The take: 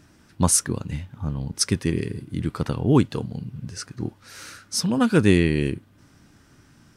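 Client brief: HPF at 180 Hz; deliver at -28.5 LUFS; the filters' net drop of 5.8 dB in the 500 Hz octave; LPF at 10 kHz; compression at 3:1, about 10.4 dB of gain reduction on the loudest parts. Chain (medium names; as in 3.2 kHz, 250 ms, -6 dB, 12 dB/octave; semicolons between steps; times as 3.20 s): high-pass 180 Hz; low-pass 10 kHz; peaking EQ 500 Hz -8 dB; compression 3:1, threshold -30 dBFS; trim +6 dB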